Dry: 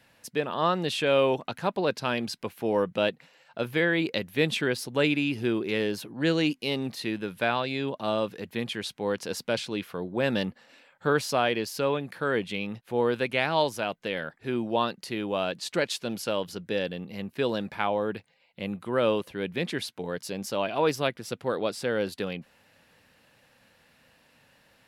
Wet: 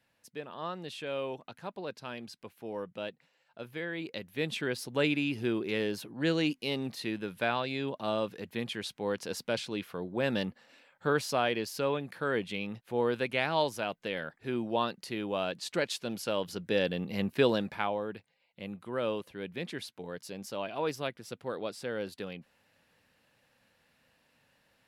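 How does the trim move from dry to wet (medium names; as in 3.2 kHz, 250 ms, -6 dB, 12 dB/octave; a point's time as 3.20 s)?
3.85 s -13 dB
4.93 s -4 dB
16.22 s -4 dB
17.29 s +4.5 dB
18.08 s -8 dB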